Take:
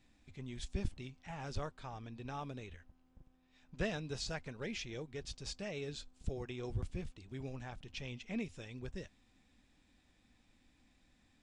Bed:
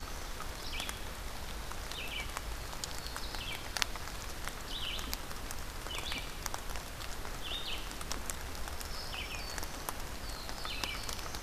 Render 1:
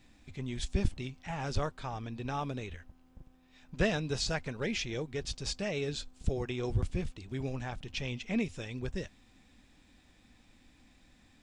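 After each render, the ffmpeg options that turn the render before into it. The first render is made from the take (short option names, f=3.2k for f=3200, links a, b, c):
-af "volume=8dB"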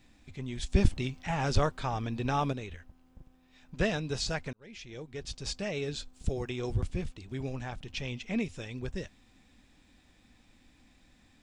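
-filter_complex "[0:a]asettb=1/sr,asplit=3[a][b][c];[a]atrim=end=0.724[d];[b]atrim=start=0.72:end=2.53,asetpts=PTS-STARTPTS,afade=t=in:d=0.004:c=qsin,afade=t=out:st=1.806:d=0.004:c=qsin,acontrast=54[e];[c]atrim=start=2.526[f];[d][e]acrossfade=d=0.004:c1=hsin:c2=qsin[g];[g][f]acrossfade=d=0.004:c1=qsin:c2=hsin,asettb=1/sr,asplit=3[h][i][j];[h]atrim=end=6.134[k];[i]atrim=start=6.13:end=6.76,asetpts=PTS-STARTPTS,afade=t=in:d=0.004:c=qsin,afade=t=out:st=0.626:d=0.004:c=qsin,highshelf=f=7.2k:g=5.5[l];[j]atrim=start=6.756[m];[k][l]acrossfade=d=0.004:c1=hsin:c2=qsin[n];[n][m]acrossfade=d=0.004:c1=qsin:c2=hsin,asplit=2[o][p];[o]atrim=end=4.53,asetpts=PTS-STARTPTS,afade=t=out:st=4.526:d=0.004:c=hsin[q];[p]atrim=start=4.53,asetpts=PTS-STARTPTS,afade=t=in:d=0.99[r];[q][r]concat=n=2:v=0:a=1"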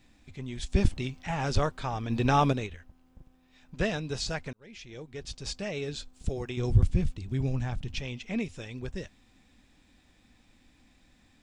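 -filter_complex "[0:a]asplit=3[a][b][c];[a]afade=t=out:st=2.09:d=0.02[d];[b]acontrast=61,afade=t=in:st=2.09:d=0.02,afade=t=out:st=2.66:d=0.02[e];[c]afade=t=in:st=2.66:d=0.02[f];[d][e][f]amix=inputs=3:normalize=0,asettb=1/sr,asplit=3[g][h][i];[g]atrim=end=6.574[j];[h]atrim=start=6.57:end=8,asetpts=PTS-STARTPTS,afade=t=in:d=0.004:c=qsin,afade=t=out:st=1.426:d=0.004:c=qsin,bass=f=250:g=10,treble=f=4k:g=2[k];[i]atrim=start=7.996[l];[j][k]acrossfade=d=0.004:c1=hsin:c2=qsin[m];[m][l]acrossfade=d=0.004:c1=qsin:c2=hsin"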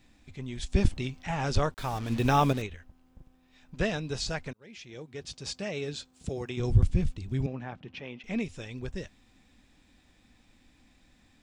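-filter_complex "[0:a]asettb=1/sr,asplit=3[a][b][c];[a]atrim=end=1.744[d];[b]atrim=start=1.74:end=2.62,asetpts=PTS-STARTPTS,afade=t=in:d=0.004:c=qsin,afade=t=out:st=0.876:d=0.004:c=qsin,acrusher=bits=6:mix=0:aa=0.5[e];[c]atrim=start=2.616[f];[d][e]acrossfade=d=0.004:c1=hsin:c2=qsin[g];[g][f]acrossfade=d=0.004:c1=qsin:c2=hsin,asettb=1/sr,asplit=3[h][i][j];[h]atrim=end=4.514[k];[i]atrim=start=4.51:end=6.6,asetpts=PTS-STARTPTS,afade=t=in:d=0.004:c=qsin,afade=t=out:st=2.086:d=0.004:c=qsin,highpass=93[l];[j]atrim=start=6.596[m];[k][l]acrossfade=d=0.004:c1=hsin:c2=qsin[n];[n][m]acrossfade=d=0.004:c1=qsin:c2=hsin,asettb=1/sr,asplit=3[o][p][q];[o]atrim=end=7.464[r];[p]atrim=start=7.46:end=8.24,asetpts=PTS-STARTPTS,afade=t=in:d=0.004:c=qsin,afade=t=out:st=0.776:d=0.004:c=qsin,highpass=230,lowpass=2.3k[s];[q]atrim=start=8.236[t];[r][s]acrossfade=d=0.004:c1=hsin:c2=qsin[u];[u][t]acrossfade=d=0.004:c1=qsin:c2=hsin"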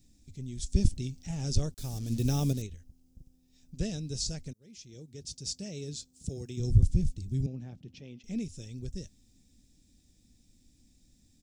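-af "firequalizer=gain_entry='entry(140,0);entry(1000,-24);entry(5500,4)':delay=0.05:min_phase=1"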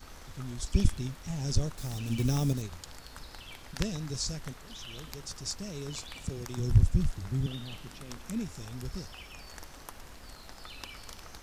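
-filter_complex "[1:a]volume=-7dB[a];[0:a][a]amix=inputs=2:normalize=0"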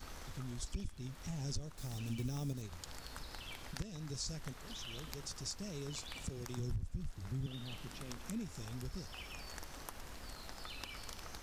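-af "alimiter=limit=-19dB:level=0:latency=1:release=461,acompressor=threshold=-44dB:ratio=2"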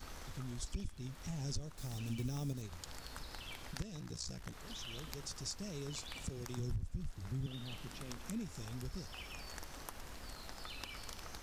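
-filter_complex "[0:a]asettb=1/sr,asplit=3[a][b][c];[a]atrim=end=4.004[d];[b]atrim=start=4:end=4.53,asetpts=PTS-STARTPTS,afade=t=in:d=0.004:c=qsin,afade=t=out:st=0.526:d=0.004:c=qsin,aeval=exprs='val(0)*sin(2*PI*30*n/s)':c=same[e];[c]atrim=start=4.526[f];[d][e]acrossfade=d=0.004:c1=hsin:c2=qsin[g];[g][f]acrossfade=d=0.004:c1=qsin:c2=hsin"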